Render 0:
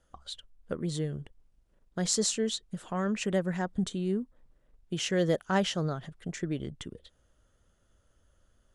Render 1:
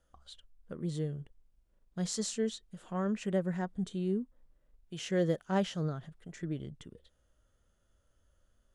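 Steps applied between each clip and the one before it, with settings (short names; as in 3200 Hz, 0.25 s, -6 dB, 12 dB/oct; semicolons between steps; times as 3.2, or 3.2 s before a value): harmonic-percussive split percussive -9 dB; gain -2 dB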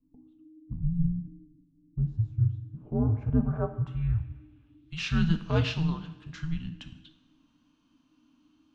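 two-slope reverb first 0.75 s, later 2.4 s, from -20 dB, DRR 7 dB; low-pass sweep 360 Hz -> 4200 Hz, 2.35–4.96; frequency shift -320 Hz; gain +4 dB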